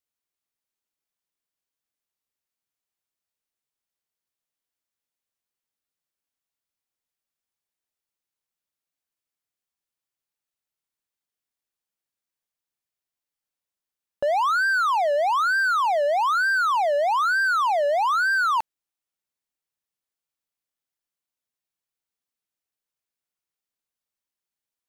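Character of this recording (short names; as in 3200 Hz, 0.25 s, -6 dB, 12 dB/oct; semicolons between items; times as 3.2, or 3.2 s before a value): noise floor -90 dBFS; spectral tilt -7.5 dB/oct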